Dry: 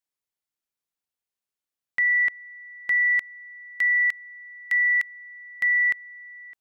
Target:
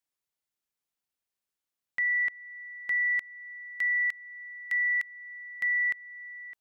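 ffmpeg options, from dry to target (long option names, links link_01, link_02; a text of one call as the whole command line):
ffmpeg -i in.wav -af "alimiter=limit=-23.5dB:level=0:latency=1:release=320" out.wav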